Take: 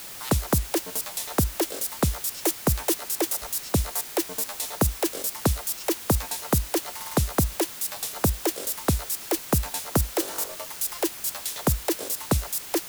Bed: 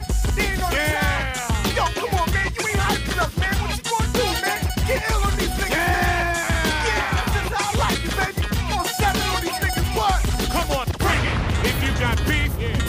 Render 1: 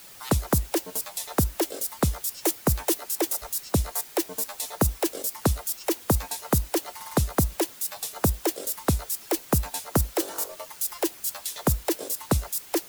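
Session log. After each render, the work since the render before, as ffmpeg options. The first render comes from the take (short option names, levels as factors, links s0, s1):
-af "afftdn=nr=8:nf=-39"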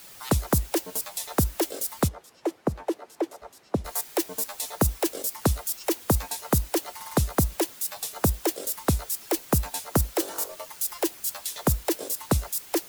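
-filter_complex "[0:a]asplit=3[s0][s1][s2];[s0]afade=t=out:st=2.07:d=0.02[s3];[s1]bandpass=f=420:t=q:w=0.55,afade=t=in:st=2.07:d=0.02,afade=t=out:st=3.84:d=0.02[s4];[s2]afade=t=in:st=3.84:d=0.02[s5];[s3][s4][s5]amix=inputs=3:normalize=0"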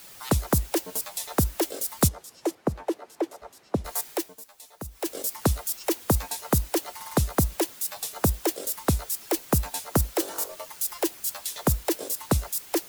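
-filter_complex "[0:a]asettb=1/sr,asplit=3[s0][s1][s2];[s0]atrim=end=2.014[s3];[s1]atrim=start=2.01:end=2.55,asetpts=PTS-STARTPTS,afade=t=in:d=0.004:c=qsin,afade=t=out:st=0.536:d=0.004:c=qsin,bass=f=250:g=3,treble=f=4000:g=9[s4];[s2]atrim=start=2.546[s5];[s3][s4]acrossfade=d=0.004:c1=hsin:c2=qsin[s6];[s6][s5]acrossfade=d=0.004:c1=qsin:c2=hsin,asplit=3[s7][s8][s9];[s7]atrim=end=4.36,asetpts=PTS-STARTPTS,afade=t=out:st=4.09:d=0.27:silence=0.16788[s10];[s8]atrim=start=4.36:end=4.91,asetpts=PTS-STARTPTS,volume=0.168[s11];[s9]atrim=start=4.91,asetpts=PTS-STARTPTS,afade=t=in:d=0.27:silence=0.16788[s12];[s10][s11][s12]concat=n=3:v=0:a=1"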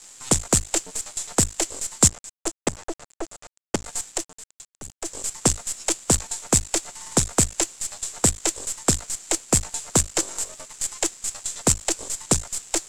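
-af "acrusher=bits=4:dc=4:mix=0:aa=0.000001,lowpass=f=7500:t=q:w=6.6"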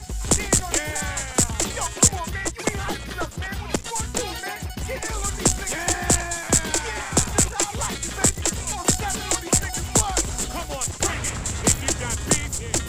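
-filter_complex "[1:a]volume=0.376[s0];[0:a][s0]amix=inputs=2:normalize=0"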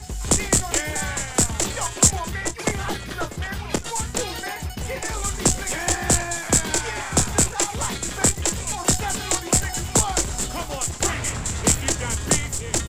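-filter_complex "[0:a]asplit=2[s0][s1];[s1]adelay=26,volume=0.335[s2];[s0][s2]amix=inputs=2:normalize=0,asplit=2[s3][s4];[s4]adelay=641.4,volume=0.158,highshelf=f=4000:g=-14.4[s5];[s3][s5]amix=inputs=2:normalize=0"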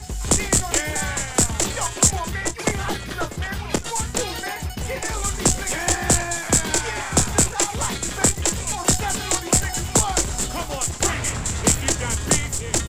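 -af "volume=1.19,alimiter=limit=0.708:level=0:latency=1"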